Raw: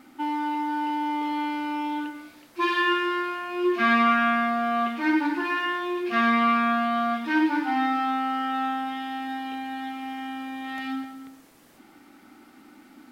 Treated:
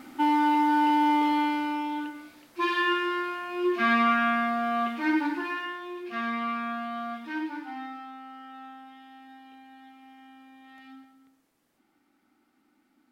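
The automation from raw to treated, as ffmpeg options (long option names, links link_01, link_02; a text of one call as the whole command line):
ffmpeg -i in.wav -af "volume=5dB,afade=type=out:start_time=1.11:duration=0.75:silence=0.421697,afade=type=out:start_time=5.22:duration=0.55:silence=0.446684,afade=type=out:start_time=7.24:duration=0.87:silence=0.398107" out.wav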